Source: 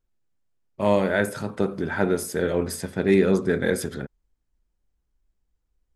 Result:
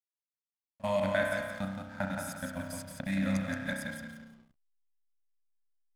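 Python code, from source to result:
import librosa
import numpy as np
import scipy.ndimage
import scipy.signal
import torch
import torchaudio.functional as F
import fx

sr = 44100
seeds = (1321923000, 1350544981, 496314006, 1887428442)

y = fx.level_steps(x, sr, step_db=22)
y = scipy.signal.sosfilt(scipy.signal.ellip(3, 1.0, 40, [270.0, 560.0], 'bandstop', fs=sr, output='sos'), y)
y = fx.high_shelf(y, sr, hz=4200.0, db=10.0)
y = fx.echo_feedback(y, sr, ms=173, feedback_pct=34, wet_db=-5.0)
y = fx.rev_spring(y, sr, rt60_s=1.3, pass_ms=(31,), chirp_ms=70, drr_db=1.5)
y = fx.backlash(y, sr, play_db=-41.0)
y = y * 10.0 ** (-7.0 / 20.0)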